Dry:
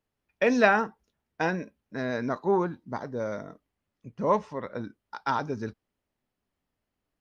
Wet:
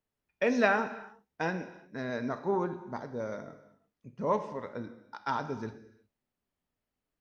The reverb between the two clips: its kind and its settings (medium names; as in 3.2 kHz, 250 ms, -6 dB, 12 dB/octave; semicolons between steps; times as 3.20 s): gated-style reverb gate 390 ms falling, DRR 9.5 dB; trim -5 dB